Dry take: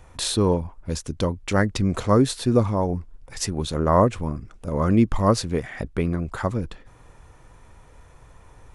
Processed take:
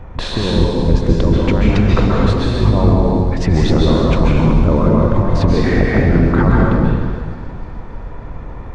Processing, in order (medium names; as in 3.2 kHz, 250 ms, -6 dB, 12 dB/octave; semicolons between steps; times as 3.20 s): octave divider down 1 oct, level -2 dB; 3.56–5.92 s: treble shelf 2 kHz +8.5 dB; compressor with a negative ratio -25 dBFS, ratio -1; tape spacing loss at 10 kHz 39 dB; feedback echo behind a high-pass 297 ms, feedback 72%, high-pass 4.5 kHz, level -14 dB; plate-style reverb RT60 1.9 s, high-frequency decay 0.95×, pre-delay 120 ms, DRR -3.5 dB; loudness maximiser +12 dB; trim -1 dB